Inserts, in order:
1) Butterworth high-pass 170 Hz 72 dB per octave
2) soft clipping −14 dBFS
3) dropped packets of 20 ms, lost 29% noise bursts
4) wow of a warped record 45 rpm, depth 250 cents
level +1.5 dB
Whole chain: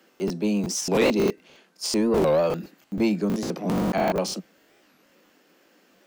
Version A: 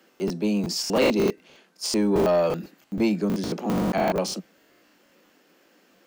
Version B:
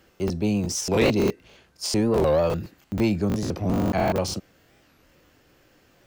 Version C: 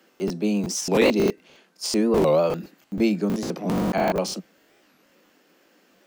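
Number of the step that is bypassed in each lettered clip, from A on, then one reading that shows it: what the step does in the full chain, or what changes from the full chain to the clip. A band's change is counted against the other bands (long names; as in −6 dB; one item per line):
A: 4, 8 kHz band −2.0 dB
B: 1, 125 Hz band +5.0 dB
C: 2, distortion level −20 dB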